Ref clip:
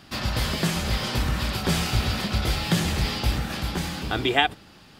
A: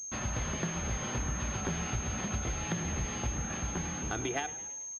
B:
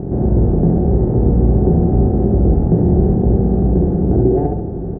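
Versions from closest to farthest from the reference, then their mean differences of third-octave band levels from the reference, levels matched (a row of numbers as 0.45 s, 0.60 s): A, B; 7.5 dB, 21.0 dB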